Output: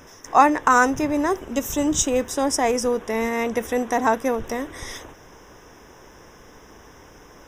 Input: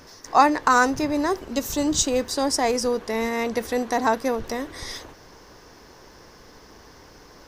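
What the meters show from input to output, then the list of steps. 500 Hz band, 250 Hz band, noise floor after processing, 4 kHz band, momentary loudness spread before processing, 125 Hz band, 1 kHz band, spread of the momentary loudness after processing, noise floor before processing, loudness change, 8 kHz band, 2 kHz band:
+1.5 dB, +1.5 dB, −48 dBFS, −3.5 dB, 13 LU, +1.5 dB, +1.5 dB, 13 LU, −49 dBFS, +1.5 dB, +1.0 dB, +1.5 dB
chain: Butterworth band-reject 4,400 Hz, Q 2.6
level +1.5 dB

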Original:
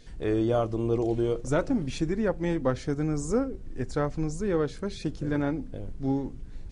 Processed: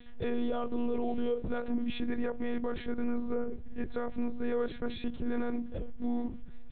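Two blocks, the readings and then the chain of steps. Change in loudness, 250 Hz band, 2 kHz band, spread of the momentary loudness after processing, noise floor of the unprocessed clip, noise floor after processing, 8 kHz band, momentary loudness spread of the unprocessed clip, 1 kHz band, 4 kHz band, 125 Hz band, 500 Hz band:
−6.5 dB, −5.0 dB, −5.0 dB, 5 LU, −42 dBFS, −42 dBFS, below −35 dB, 8 LU, −5.5 dB, −4.0 dB, −16.0 dB, −7.0 dB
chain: one-pitch LPC vocoder at 8 kHz 240 Hz
brickwall limiter −23 dBFS, peak gain reduction 11 dB

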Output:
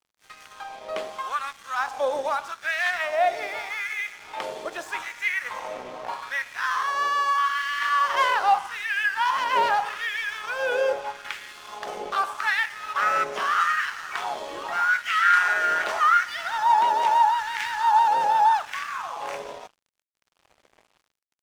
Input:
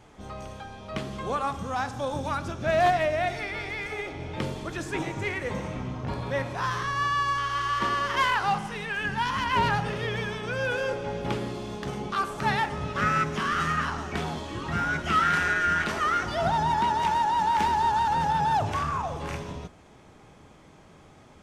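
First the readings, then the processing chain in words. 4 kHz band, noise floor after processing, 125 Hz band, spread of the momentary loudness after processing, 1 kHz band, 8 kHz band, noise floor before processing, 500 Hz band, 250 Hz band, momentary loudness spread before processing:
+2.0 dB, −74 dBFS, below −25 dB, 15 LU, +3.5 dB, +2.0 dB, −53 dBFS, 0.0 dB, −15.0 dB, 11 LU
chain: auto-filter high-pass sine 0.81 Hz 530–1,900 Hz
in parallel at −3 dB: downward compressor, threshold −39 dBFS, peak gain reduction 22 dB
on the sum: dead-zone distortion −43.5 dBFS

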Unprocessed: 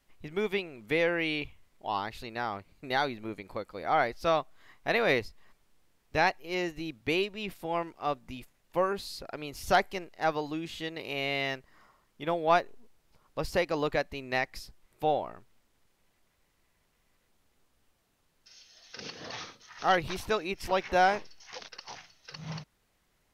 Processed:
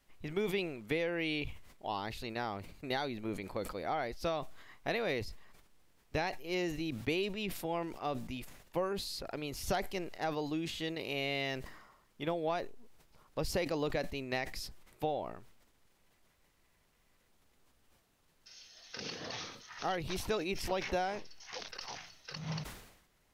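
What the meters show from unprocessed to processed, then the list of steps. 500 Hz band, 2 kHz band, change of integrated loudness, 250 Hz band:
−5.5 dB, −8.0 dB, −6.5 dB, −2.0 dB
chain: downward compressor 6 to 1, threshold −28 dBFS, peak gain reduction 10 dB
dynamic equaliser 1,300 Hz, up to −6 dB, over −46 dBFS, Q 0.76
level that may fall only so fast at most 67 dB per second

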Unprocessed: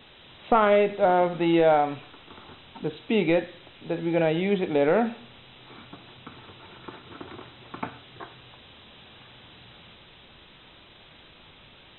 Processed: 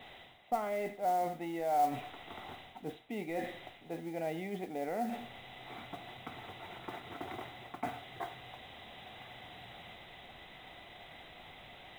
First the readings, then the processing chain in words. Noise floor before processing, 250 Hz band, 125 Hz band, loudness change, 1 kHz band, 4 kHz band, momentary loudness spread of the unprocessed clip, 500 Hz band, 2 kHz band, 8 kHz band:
−52 dBFS, −14.5 dB, −14.0 dB, −16.0 dB, −8.0 dB, −9.5 dB, 22 LU, −15.0 dB, −12.0 dB, can't be measured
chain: dynamic equaliser 250 Hz, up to +7 dB, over −40 dBFS, Q 1.9
reversed playback
downward compressor 6 to 1, threshold −35 dBFS, peak gain reduction 20 dB
reversed playback
hollow resonant body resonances 730/2,000 Hz, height 14 dB, ringing for 25 ms
noise that follows the level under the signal 23 dB
level −4 dB

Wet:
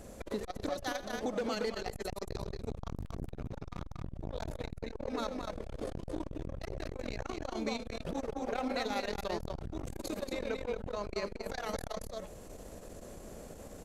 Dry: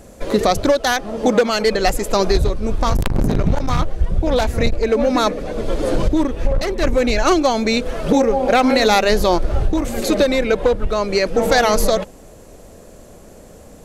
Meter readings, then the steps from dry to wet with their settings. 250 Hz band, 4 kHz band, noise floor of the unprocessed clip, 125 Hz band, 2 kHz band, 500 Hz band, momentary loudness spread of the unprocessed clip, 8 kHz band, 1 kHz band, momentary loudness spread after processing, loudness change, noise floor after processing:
−20.5 dB, −21.0 dB, −42 dBFS, −20.0 dB, −21.0 dB, −21.5 dB, 7 LU, −21.0 dB, −21.5 dB, 10 LU, −21.5 dB, −50 dBFS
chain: downward compressor 2.5 to 1, threshold −31 dBFS, peak gain reduction 14 dB
on a send: multi-tap delay 82/229 ms −15.5/−3.5 dB
on the sum: saturating transformer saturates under 310 Hz
level −7 dB

